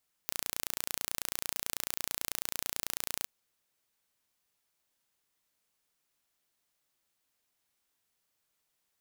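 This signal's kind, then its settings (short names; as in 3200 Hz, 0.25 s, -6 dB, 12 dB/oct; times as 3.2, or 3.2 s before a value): pulse train 29.1/s, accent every 0, -6 dBFS 2.98 s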